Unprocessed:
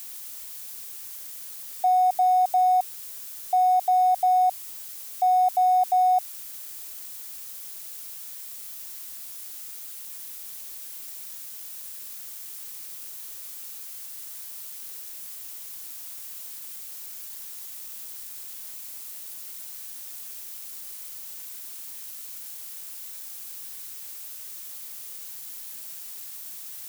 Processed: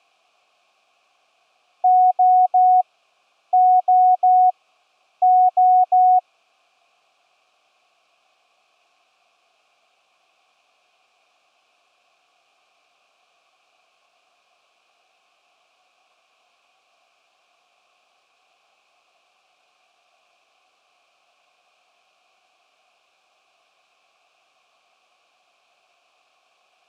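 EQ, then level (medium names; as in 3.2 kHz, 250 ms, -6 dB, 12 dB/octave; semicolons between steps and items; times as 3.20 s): vowel filter a; low-pass 5.2 kHz 12 dB/octave; +6.0 dB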